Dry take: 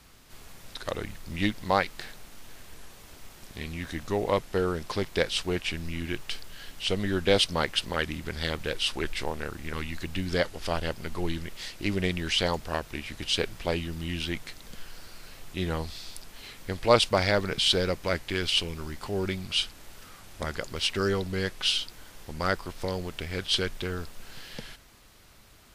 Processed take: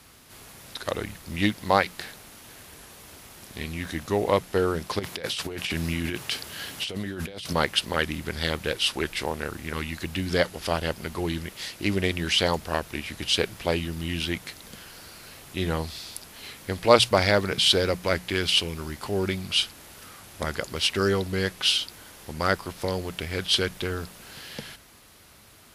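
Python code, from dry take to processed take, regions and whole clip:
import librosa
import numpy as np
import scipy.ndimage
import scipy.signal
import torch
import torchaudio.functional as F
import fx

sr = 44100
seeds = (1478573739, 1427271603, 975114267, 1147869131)

y = fx.chain(x, sr, fx.highpass(hz=68.0, slope=12),
    fx.over_compress(threshold_db=-35.0, ratio=-1.0), at=(4.99, 7.53))
y = scipy.signal.sosfilt(scipy.signal.butter(2, 61.0, 'highpass', fs=sr, output='sos'), y)
y = fx.peak_eq(y, sr, hz=11000.0, db=7.5, octaves=0.24)
y = fx.hum_notches(y, sr, base_hz=60, count=3)
y = y * librosa.db_to_amplitude(3.5)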